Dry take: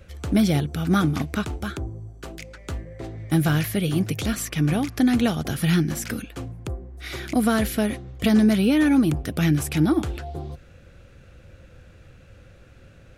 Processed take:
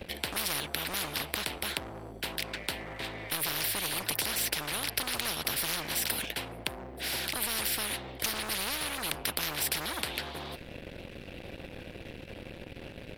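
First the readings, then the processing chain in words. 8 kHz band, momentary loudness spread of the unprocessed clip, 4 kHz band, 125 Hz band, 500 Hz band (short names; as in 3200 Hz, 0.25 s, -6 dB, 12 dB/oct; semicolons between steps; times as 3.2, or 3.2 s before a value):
+2.0 dB, 17 LU, +2.5 dB, -20.5 dB, -11.0 dB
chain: fixed phaser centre 2900 Hz, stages 4; sample leveller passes 2; spectral compressor 10:1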